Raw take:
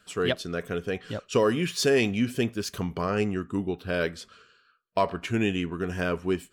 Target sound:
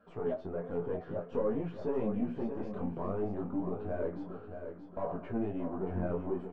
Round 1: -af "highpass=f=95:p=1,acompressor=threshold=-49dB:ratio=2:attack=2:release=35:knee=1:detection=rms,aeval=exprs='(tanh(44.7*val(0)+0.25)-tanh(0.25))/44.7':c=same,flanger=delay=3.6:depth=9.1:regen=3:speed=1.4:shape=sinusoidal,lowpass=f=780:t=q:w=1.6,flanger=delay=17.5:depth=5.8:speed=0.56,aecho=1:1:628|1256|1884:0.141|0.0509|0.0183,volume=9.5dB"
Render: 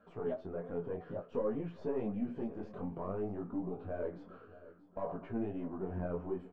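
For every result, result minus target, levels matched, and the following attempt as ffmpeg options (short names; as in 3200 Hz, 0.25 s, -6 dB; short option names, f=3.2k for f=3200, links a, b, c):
echo-to-direct -9 dB; compressor: peak gain reduction +4 dB
-af "highpass=f=95:p=1,acompressor=threshold=-49dB:ratio=2:attack=2:release=35:knee=1:detection=rms,aeval=exprs='(tanh(44.7*val(0)+0.25)-tanh(0.25))/44.7':c=same,flanger=delay=3.6:depth=9.1:regen=3:speed=1.4:shape=sinusoidal,lowpass=f=780:t=q:w=1.6,flanger=delay=17.5:depth=5.8:speed=0.56,aecho=1:1:628|1256|1884|2512:0.398|0.143|0.0516|0.0186,volume=9.5dB"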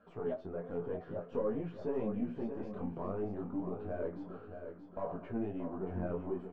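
compressor: peak gain reduction +4 dB
-af "highpass=f=95:p=1,acompressor=threshold=-41dB:ratio=2:attack=2:release=35:knee=1:detection=rms,aeval=exprs='(tanh(44.7*val(0)+0.25)-tanh(0.25))/44.7':c=same,flanger=delay=3.6:depth=9.1:regen=3:speed=1.4:shape=sinusoidal,lowpass=f=780:t=q:w=1.6,flanger=delay=17.5:depth=5.8:speed=0.56,aecho=1:1:628|1256|1884|2512:0.398|0.143|0.0516|0.0186,volume=9.5dB"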